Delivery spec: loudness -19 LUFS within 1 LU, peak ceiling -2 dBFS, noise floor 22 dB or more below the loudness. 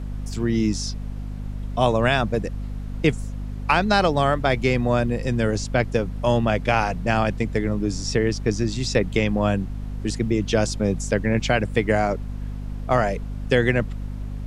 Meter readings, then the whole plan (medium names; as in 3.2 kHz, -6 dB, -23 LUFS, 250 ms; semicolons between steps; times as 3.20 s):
hum 50 Hz; highest harmonic 250 Hz; hum level -28 dBFS; noise floor -32 dBFS; noise floor target -45 dBFS; loudness -22.5 LUFS; peak level -4.5 dBFS; loudness target -19.0 LUFS
-> de-hum 50 Hz, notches 5; noise print and reduce 13 dB; trim +3.5 dB; peak limiter -2 dBFS